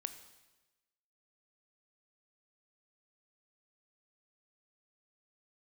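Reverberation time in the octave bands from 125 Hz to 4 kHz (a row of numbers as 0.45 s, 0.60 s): 1.2 s, 1.1 s, 1.1 s, 1.1 s, 1.1 s, 1.1 s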